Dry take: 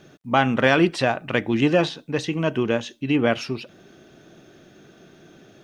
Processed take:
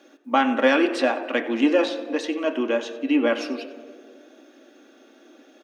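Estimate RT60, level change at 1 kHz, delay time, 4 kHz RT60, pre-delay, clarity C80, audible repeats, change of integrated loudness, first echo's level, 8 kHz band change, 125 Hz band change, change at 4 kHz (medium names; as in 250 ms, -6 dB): 1.8 s, -0.5 dB, 92 ms, 0.80 s, 4 ms, 11.5 dB, 1, -0.5 dB, -16.0 dB, -3.0 dB, under -25 dB, -2.0 dB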